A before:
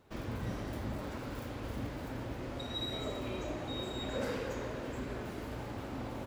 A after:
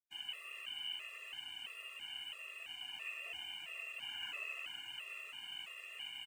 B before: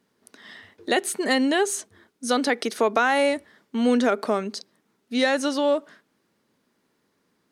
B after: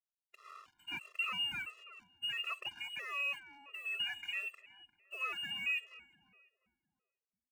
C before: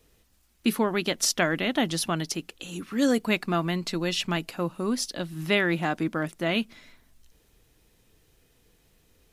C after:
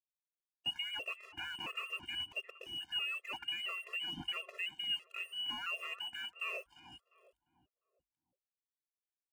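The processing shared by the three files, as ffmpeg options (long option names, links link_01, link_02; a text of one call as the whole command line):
ffmpeg -i in.wav -filter_complex "[0:a]lowpass=frequency=2600:width_type=q:width=0.5098,lowpass=frequency=2600:width_type=q:width=0.6013,lowpass=frequency=2600:width_type=q:width=0.9,lowpass=frequency=2600:width_type=q:width=2.563,afreqshift=-3100,highpass=58,lowshelf=frequency=120:gain=9,asplit=2[link_01][link_02];[link_02]acompressor=threshold=-33dB:ratio=6,volume=-1dB[link_03];[link_01][link_03]amix=inputs=2:normalize=0,alimiter=limit=-19dB:level=0:latency=1:release=51,aeval=exprs='sgn(val(0))*max(abs(val(0))-0.00501,0)':channel_layout=same,bandreject=frequency=50:width_type=h:width=6,bandreject=frequency=100:width_type=h:width=6,asplit=2[link_04][link_05];[link_05]adelay=350,lowpass=frequency=1100:poles=1,volume=-10.5dB,asplit=2[link_06][link_07];[link_07]adelay=350,lowpass=frequency=1100:poles=1,volume=0.47,asplit=2[link_08][link_09];[link_09]adelay=350,lowpass=frequency=1100:poles=1,volume=0.47,asplit=2[link_10][link_11];[link_11]adelay=350,lowpass=frequency=1100:poles=1,volume=0.47,asplit=2[link_12][link_13];[link_13]adelay=350,lowpass=frequency=1100:poles=1,volume=0.47[link_14];[link_04][link_06][link_08][link_10][link_12][link_14]amix=inputs=6:normalize=0,afftfilt=real='re*gt(sin(2*PI*1.5*pts/sr)*(1-2*mod(floor(b*sr/1024/350),2)),0)':imag='im*gt(sin(2*PI*1.5*pts/sr)*(1-2*mod(floor(b*sr/1024/350),2)),0)':win_size=1024:overlap=0.75,volume=-8dB" out.wav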